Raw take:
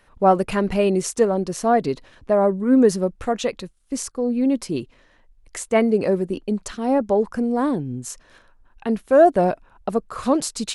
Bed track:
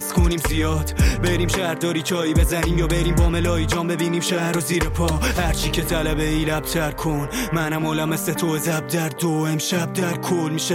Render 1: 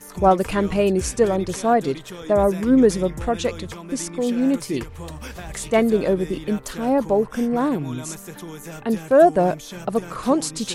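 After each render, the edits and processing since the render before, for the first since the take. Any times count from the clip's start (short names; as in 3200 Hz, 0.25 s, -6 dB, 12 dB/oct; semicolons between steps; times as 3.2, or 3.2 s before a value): add bed track -14.5 dB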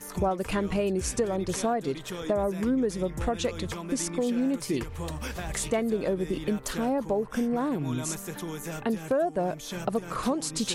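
compressor 6:1, threshold -24 dBFS, peak gain reduction 14.5 dB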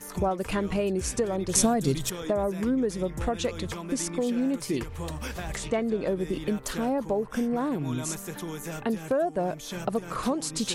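1.55–2.1 tone controls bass +13 dB, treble +14 dB; 5.56–6.07 air absorption 64 m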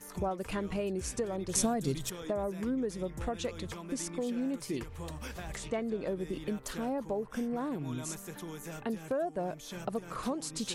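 gain -7 dB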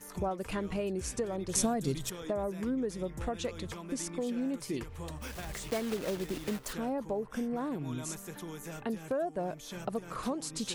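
5.22–6.74 block floating point 3-bit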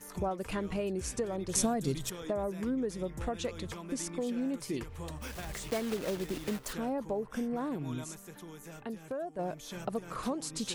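8.04–9.39 gain -5 dB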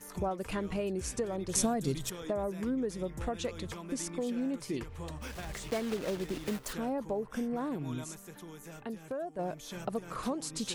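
4.46–6.46 high shelf 9900 Hz -7 dB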